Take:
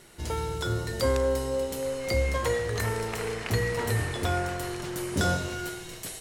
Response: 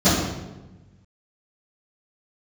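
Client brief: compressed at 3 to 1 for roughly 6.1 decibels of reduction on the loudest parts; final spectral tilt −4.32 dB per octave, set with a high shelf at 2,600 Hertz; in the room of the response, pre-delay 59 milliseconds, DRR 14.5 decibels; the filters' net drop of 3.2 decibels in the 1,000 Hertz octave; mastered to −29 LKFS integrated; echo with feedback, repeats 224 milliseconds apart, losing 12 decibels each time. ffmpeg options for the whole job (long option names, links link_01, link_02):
-filter_complex "[0:a]equalizer=frequency=1000:width_type=o:gain=-6,highshelf=frequency=2600:gain=6,acompressor=threshold=-29dB:ratio=3,aecho=1:1:224|448|672:0.251|0.0628|0.0157,asplit=2[link_01][link_02];[1:a]atrim=start_sample=2205,adelay=59[link_03];[link_02][link_03]afir=irnorm=-1:irlink=0,volume=-36.5dB[link_04];[link_01][link_04]amix=inputs=2:normalize=0,volume=2dB"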